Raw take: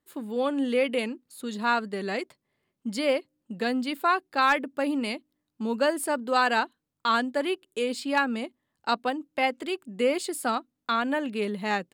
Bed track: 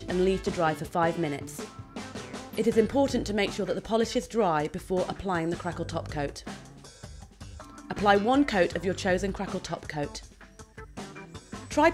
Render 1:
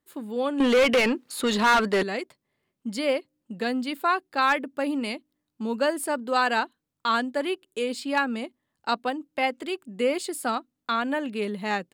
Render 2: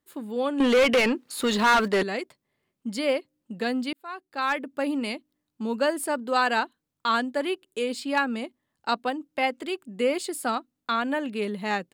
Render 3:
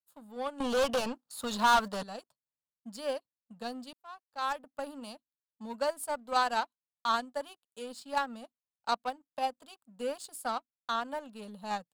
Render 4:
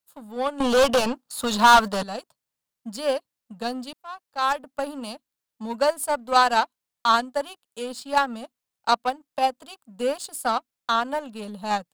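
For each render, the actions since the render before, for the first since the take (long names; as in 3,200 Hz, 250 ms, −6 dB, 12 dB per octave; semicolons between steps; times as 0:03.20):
0:00.60–0:02.03: mid-hump overdrive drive 26 dB, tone 3,600 Hz, clips at −12 dBFS
0:01.37–0:01.88: centre clipping without the shift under −41.5 dBFS; 0:03.93–0:04.81: fade in
phaser with its sweep stopped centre 870 Hz, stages 4; power curve on the samples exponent 1.4
level +10 dB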